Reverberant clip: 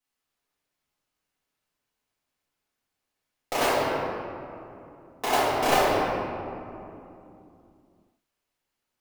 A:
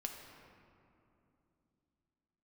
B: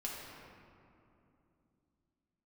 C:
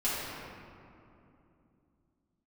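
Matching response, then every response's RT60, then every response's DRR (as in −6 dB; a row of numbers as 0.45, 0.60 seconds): C; 2.8, 2.8, 2.8 seconds; 2.0, −4.5, −11.5 decibels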